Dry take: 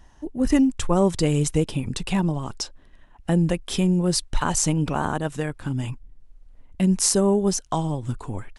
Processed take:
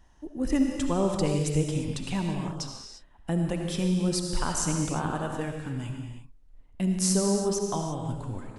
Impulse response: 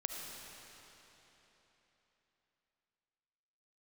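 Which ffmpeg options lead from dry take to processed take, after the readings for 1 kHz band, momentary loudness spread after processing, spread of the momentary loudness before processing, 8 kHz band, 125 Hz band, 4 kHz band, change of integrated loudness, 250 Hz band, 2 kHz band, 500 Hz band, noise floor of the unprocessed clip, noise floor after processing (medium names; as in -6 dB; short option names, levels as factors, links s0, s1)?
-5.0 dB, 12 LU, 12 LU, -5.5 dB, -5.0 dB, -5.0 dB, -5.5 dB, -5.0 dB, -5.5 dB, -5.0 dB, -51 dBFS, -55 dBFS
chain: -filter_complex "[1:a]atrim=start_sample=2205,afade=t=out:st=0.41:d=0.01,atrim=end_sample=18522[s0];[0:a][s0]afir=irnorm=-1:irlink=0,volume=0.531"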